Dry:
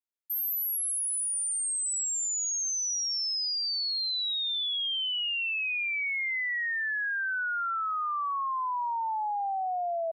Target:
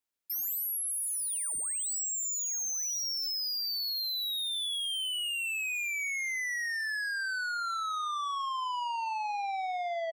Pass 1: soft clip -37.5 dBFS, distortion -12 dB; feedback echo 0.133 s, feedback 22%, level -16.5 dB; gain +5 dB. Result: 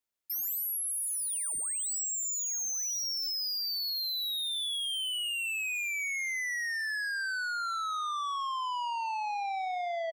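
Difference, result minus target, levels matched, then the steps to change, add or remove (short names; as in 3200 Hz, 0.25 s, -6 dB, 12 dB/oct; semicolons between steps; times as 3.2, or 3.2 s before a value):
echo 50 ms late
change: feedback echo 83 ms, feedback 22%, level -16.5 dB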